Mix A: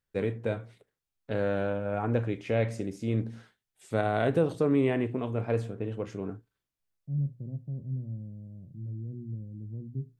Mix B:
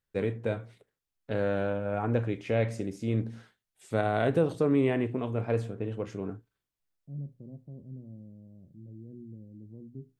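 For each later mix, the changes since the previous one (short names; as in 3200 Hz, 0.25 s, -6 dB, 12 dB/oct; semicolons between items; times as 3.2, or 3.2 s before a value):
second voice: add bell 120 Hz -11.5 dB 0.99 oct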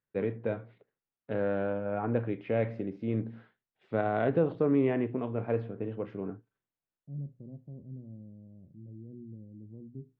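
first voice: add BPF 130–4300 Hz; master: add air absorption 380 m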